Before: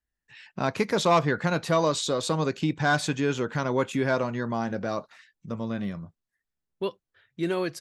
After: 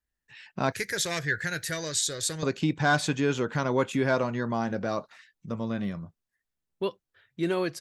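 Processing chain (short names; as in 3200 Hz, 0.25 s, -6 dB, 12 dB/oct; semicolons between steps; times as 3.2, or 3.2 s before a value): 0.72–2.43 EQ curve 110 Hz 0 dB, 230 Hz -17 dB, 370 Hz -8 dB, 1100 Hz -20 dB, 1700 Hz +7 dB, 2600 Hz -5 dB, 12000 Hz +12 dB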